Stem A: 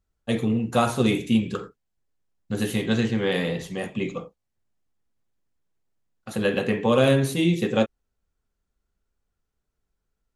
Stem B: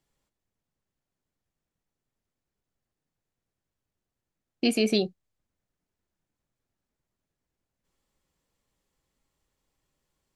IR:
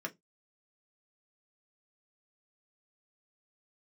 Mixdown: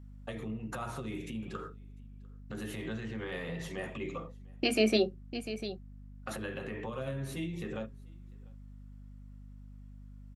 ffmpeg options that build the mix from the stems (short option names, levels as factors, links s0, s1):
-filter_complex "[0:a]acrossover=split=160[s0][s1];[s1]acompressor=threshold=0.0224:ratio=5[s2];[s0][s2]amix=inputs=2:normalize=0,alimiter=level_in=2:limit=0.0631:level=0:latency=1:release=148,volume=0.501,volume=0.596,asplit=3[s3][s4][s5];[s4]volume=0.668[s6];[s5]volume=0.0631[s7];[1:a]volume=0.447,asplit=3[s8][s9][s10];[s9]volume=0.708[s11];[s10]volume=0.355[s12];[2:a]atrim=start_sample=2205[s13];[s6][s11]amix=inputs=2:normalize=0[s14];[s14][s13]afir=irnorm=-1:irlink=0[s15];[s7][s12]amix=inputs=2:normalize=0,aecho=0:1:698:1[s16];[s3][s8][s15][s16]amix=inputs=4:normalize=0,equalizer=f=1100:t=o:w=2.4:g=6,aeval=exprs='val(0)+0.00398*(sin(2*PI*50*n/s)+sin(2*PI*2*50*n/s)/2+sin(2*PI*3*50*n/s)/3+sin(2*PI*4*50*n/s)/4+sin(2*PI*5*50*n/s)/5)':c=same"